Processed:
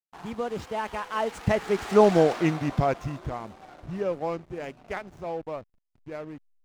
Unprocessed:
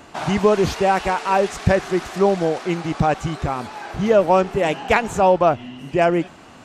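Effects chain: Doppler pass-by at 2.19, 41 m/s, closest 13 m; backlash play -41.5 dBFS; gain +1 dB

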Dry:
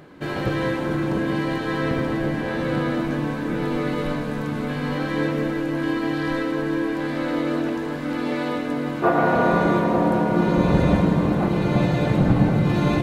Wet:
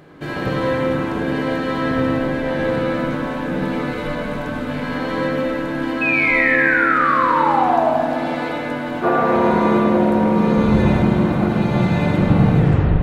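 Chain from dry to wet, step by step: tape stop at the end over 0.46 s; painted sound fall, 6.01–7.9, 620–2600 Hz -20 dBFS; spring tank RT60 2.4 s, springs 42/53 ms, chirp 30 ms, DRR -1.5 dB

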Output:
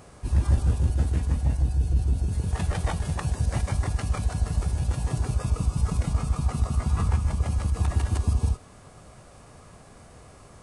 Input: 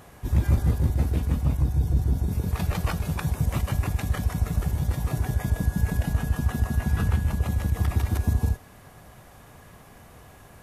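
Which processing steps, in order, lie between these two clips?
formant shift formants -5 st

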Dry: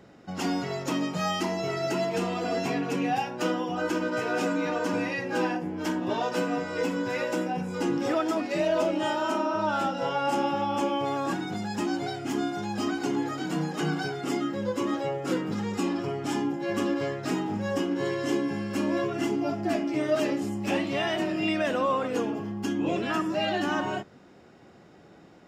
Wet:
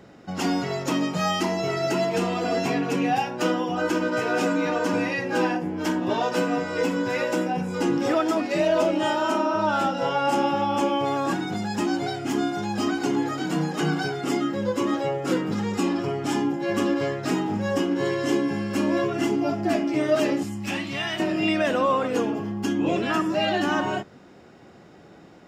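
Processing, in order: 20.43–21.2 bell 490 Hz -12.5 dB 1.7 oct; gain +4 dB

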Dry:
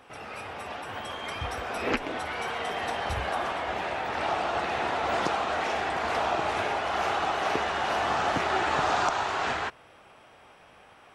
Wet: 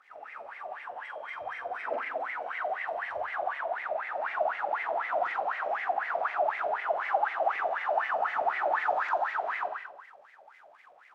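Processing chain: crackle 490/s -38 dBFS; flutter echo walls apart 7.6 m, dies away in 1.1 s; wah 4 Hz 580–2100 Hz, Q 12; gain +5.5 dB

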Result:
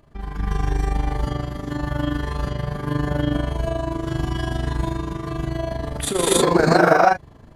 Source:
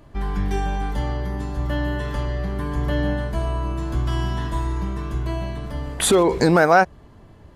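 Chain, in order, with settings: non-linear reverb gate 0.34 s rising, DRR -6.5 dB; 5.67–6.28 transient shaper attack -10 dB, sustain +6 dB; AM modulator 25 Hz, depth 55%; gain -3 dB

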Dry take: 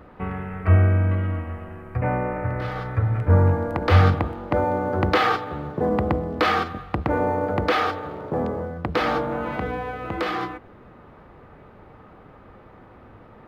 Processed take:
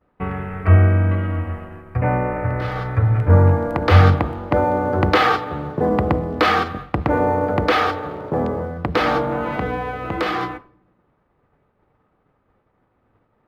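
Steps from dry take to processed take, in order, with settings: expander -33 dBFS; shoebox room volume 2700 m³, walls furnished, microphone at 0.31 m; gain +4 dB

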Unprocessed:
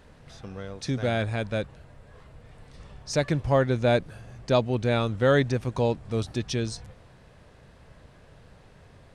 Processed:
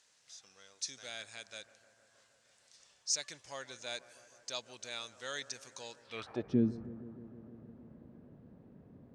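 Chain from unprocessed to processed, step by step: band-pass sweep 6600 Hz -> 240 Hz, 5.99–6.56; analogue delay 0.156 s, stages 2048, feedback 80%, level -17.5 dB; gain +5 dB

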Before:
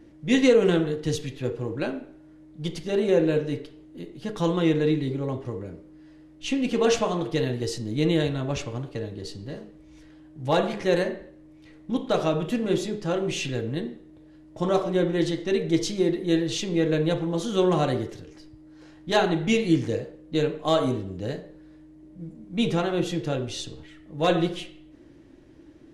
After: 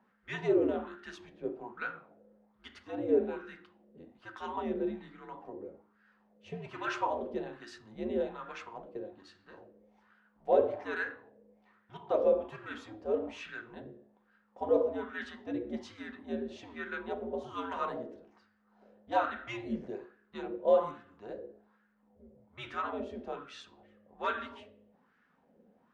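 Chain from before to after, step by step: de-hum 57.38 Hz, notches 33; frequency shift -100 Hz; wah 1.2 Hz 510–1500 Hz, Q 3.9; gain +3.5 dB

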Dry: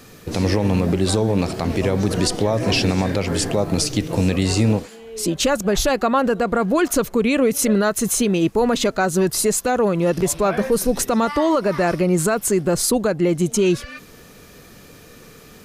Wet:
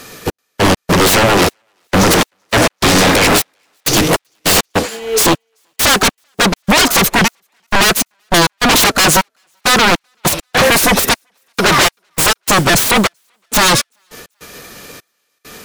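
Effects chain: low shelf 320 Hz -12 dB; sine folder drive 19 dB, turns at -8.5 dBFS; step gate "xx..x.xxxx..." 101 bpm -60 dB; soft clip -12 dBFS, distortion -17 dB; thinning echo 0.385 s, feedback 53%, high-pass 810 Hz, level -18 dB; upward expander 2.5:1, over -33 dBFS; gain +6.5 dB

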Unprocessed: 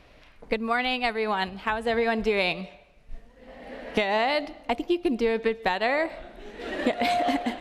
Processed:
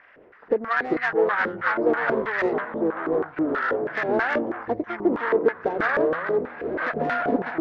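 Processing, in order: nonlinear frequency compression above 1200 Hz 1.5:1; in parallel at -1 dB: compressor, threshold -33 dBFS, peak gain reduction 13.5 dB; on the sum: added harmonics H 6 -15 dB, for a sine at -10.5 dBFS; echoes that change speed 0.18 s, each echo -6 st, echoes 3; dynamic EQ 2600 Hz, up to -6 dB, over -45 dBFS, Q 2.6; LFO band-pass square 3.1 Hz 410–1600 Hz; gain +5.5 dB

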